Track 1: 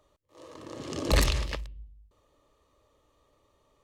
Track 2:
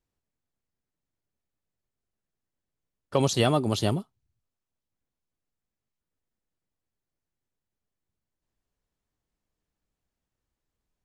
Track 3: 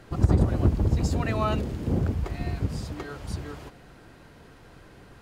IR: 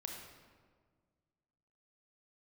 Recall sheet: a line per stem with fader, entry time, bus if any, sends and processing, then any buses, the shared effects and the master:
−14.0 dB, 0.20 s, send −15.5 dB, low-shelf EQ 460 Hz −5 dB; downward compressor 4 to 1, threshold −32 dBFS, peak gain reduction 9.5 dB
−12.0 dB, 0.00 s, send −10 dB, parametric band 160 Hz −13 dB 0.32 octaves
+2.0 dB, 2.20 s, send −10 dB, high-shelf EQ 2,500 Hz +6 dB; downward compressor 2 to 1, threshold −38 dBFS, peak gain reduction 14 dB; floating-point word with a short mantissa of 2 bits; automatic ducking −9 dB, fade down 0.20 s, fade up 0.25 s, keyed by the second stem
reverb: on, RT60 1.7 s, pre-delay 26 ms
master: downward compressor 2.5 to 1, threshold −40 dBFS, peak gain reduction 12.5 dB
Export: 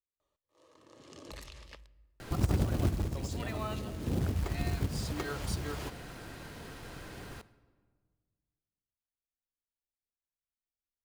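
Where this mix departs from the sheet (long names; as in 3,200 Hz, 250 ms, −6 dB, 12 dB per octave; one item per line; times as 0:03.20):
stem 2 −12.0 dB → −23.5 dB
master: missing downward compressor 2.5 to 1, threshold −40 dBFS, peak gain reduction 12.5 dB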